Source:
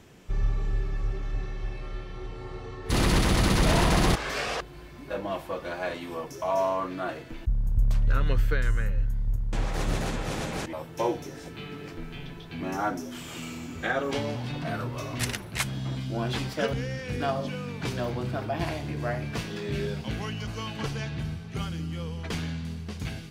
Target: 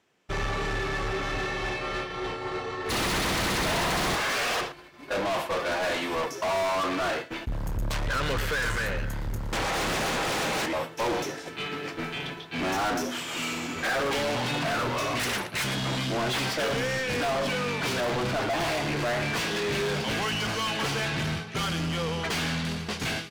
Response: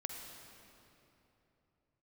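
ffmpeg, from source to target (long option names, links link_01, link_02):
-filter_complex "[0:a]asplit=2[link_01][link_02];[link_02]adelay=116.6,volume=-18dB,highshelf=frequency=4000:gain=-2.62[link_03];[link_01][link_03]amix=inputs=2:normalize=0,agate=range=-33dB:threshold=-31dB:ratio=3:detection=peak,asplit=2[link_04][link_05];[link_05]highpass=frequency=720:poles=1,volume=37dB,asoftclip=type=tanh:threshold=-12dB[link_06];[link_04][link_06]amix=inputs=2:normalize=0,lowpass=frequency=5000:poles=1,volume=-6dB,volume=-8.5dB"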